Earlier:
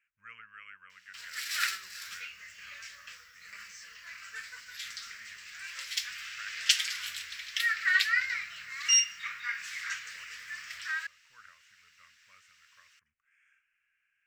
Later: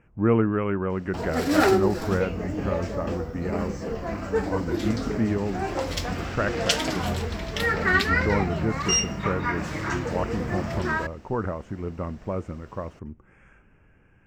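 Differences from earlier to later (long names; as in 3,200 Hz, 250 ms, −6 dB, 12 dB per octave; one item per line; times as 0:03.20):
speech +7.0 dB
master: remove inverse Chebyshev high-pass filter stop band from 860 Hz, stop band 40 dB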